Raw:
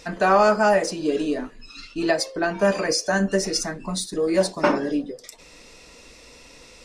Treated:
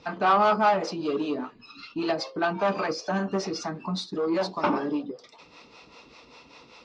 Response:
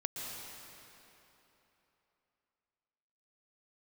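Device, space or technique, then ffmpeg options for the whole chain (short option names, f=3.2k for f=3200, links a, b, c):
guitar amplifier with harmonic tremolo: -filter_complex "[0:a]acrossover=split=430[a][b];[a]aeval=exprs='val(0)*(1-0.7/2+0.7/2*cos(2*PI*5.1*n/s))':c=same[c];[b]aeval=exprs='val(0)*(1-0.7/2-0.7/2*cos(2*PI*5.1*n/s))':c=same[d];[c][d]amix=inputs=2:normalize=0,asoftclip=type=tanh:threshold=-20dB,highpass=110,equalizer=f=540:t=q:w=4:g=-4,equalizer=f=860:t=q:w=4:g=6,equalizer=f=1.2k:t=q:w=4:g=7,equalizer=f=1.8k:t=q:w=4:g=-7,lowpass=f=4.6k:w=0.5412,lowpass=f=4.6k:w=1.3066,volume=1.5dB"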